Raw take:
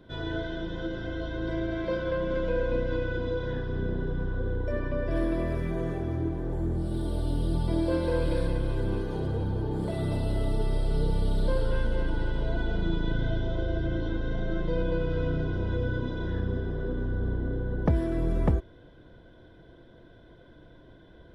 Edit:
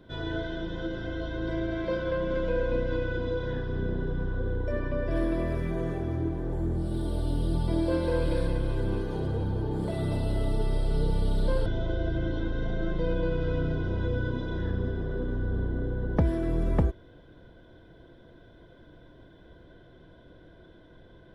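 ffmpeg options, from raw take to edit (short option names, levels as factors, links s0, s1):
-filter_complex "[0:a]asplit=2[s0][s1];[s0]atrim=end=11.662[s2];[s1]atrim=start=13.348[s3];[s2][s3]acrossfade=d=0.004:c1=hsin:c2=hsin"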